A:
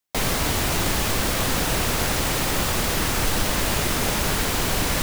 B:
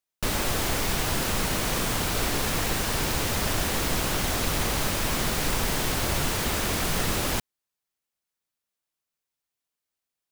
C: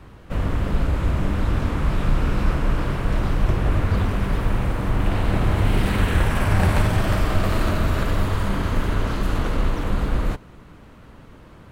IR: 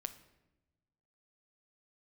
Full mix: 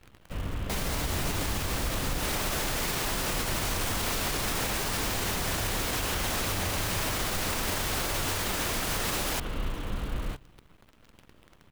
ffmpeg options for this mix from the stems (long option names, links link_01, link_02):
-filter_complex "[0:a]adelay=550,volume=-6.5dB[link_01];[1:a]highpass=frequency=350:poles=1,adelay=2000,volume=1.5dB[link_02];[2:a]equalizer=frequency=3100:width_type=o:width=0.86:gain=7.5,acrusher=bits=7:dc=4:mix=0:aa=0.000001,volume=-12.5dB,asplit=2[link_03][link_04];[link_04]volume=-12dB[link_05];[3:a]atrim=start_sample=2205[link_06];[link_05][link_06]afir=irnorm=-1:irlink=0[link_07];[link_01][link_02][link_03][link_07]amix=inputs=4:normalize=0,alimiter=limit=-20dB:level=0:latency=1:release=77"